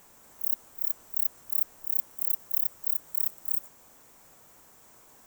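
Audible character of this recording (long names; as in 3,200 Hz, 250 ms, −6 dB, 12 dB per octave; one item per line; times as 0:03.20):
background noise floor −56 dBFS
spectral slope +0.5 dB per octave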